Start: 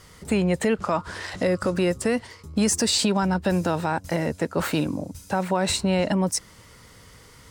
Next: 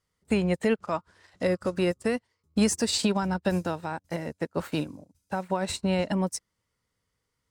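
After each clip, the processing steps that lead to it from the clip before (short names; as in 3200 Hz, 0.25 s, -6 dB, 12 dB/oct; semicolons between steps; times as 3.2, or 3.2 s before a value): upward expander 2.5:1, over -39 dBFS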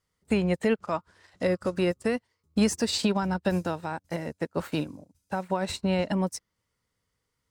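dynamic EQ 8600 Hz, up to -5 dB, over -49 dBFS, Q 1.2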